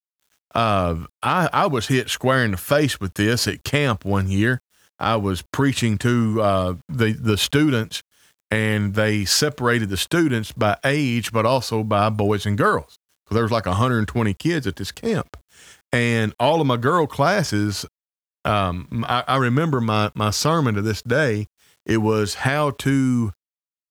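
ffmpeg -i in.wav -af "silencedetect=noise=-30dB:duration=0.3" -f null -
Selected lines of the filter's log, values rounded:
silence_start: 0.00
silence_end: 0.56 | silence_duration: 0.56
silence_start: 4.57
silence_end: 5.00 | silence_duration: 0.42
silence_start: 8.00
silence_end: 8.51 | silence_duration: 0.52
silence_start: 12.82
silence_end: 13.31 | silence_duration: 0.50
silence_start: 15.34
silence_end: 15.93 | silence_duration: 0.59
silence_start: 17.85
silence_end: 18.45 | silence_duration: 0.60
silence_start: 21.44
silence_end: 21.89 | silence_duration: 0.44
silence_start: 23.31
silence_end: 23.91 | silence_duration: 0.60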